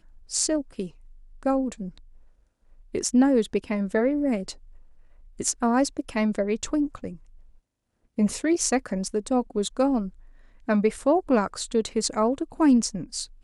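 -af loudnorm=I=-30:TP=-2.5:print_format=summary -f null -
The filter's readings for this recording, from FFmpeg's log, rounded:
Input Integrated:    -24.8 LUFS
Input True Peak:      -5.6 dBTP
Input LRA:             3.8 LU
Input Threshold:     -35.8 LUFS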